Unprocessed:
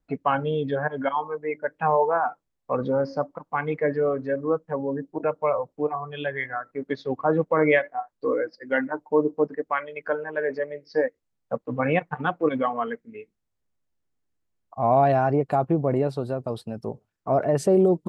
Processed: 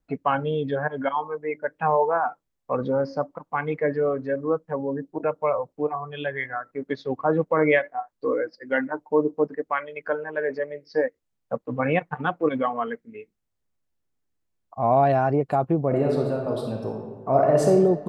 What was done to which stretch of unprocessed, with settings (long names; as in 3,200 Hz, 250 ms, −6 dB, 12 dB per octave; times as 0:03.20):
0:15.87–0:17.67: thrown reverb, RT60 1.4 s, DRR 0 dB